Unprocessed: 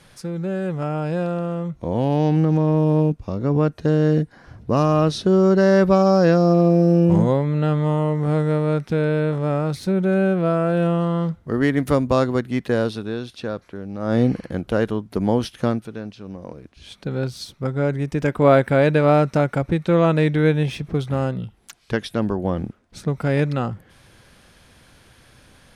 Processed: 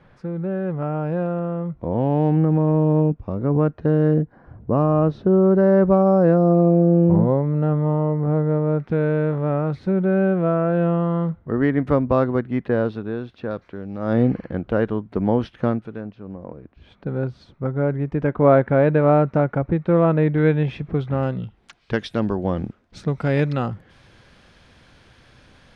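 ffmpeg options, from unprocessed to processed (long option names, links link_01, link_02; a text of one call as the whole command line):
ffmpeg -i in.wav -af "asetnsamples=nb_out_samples=441:pad=0,asendcmd='4.14 lowpass f 1100;8.79 lowpass f 1800;13.51 lowpass f 3400;14.13 lowpass f 2100;16.01 lowpass f 1500;20.38 lowpass f 2300;21.23 lowpass f 3500;21.94 lowpass f 5200',lowpass=1600" out.wav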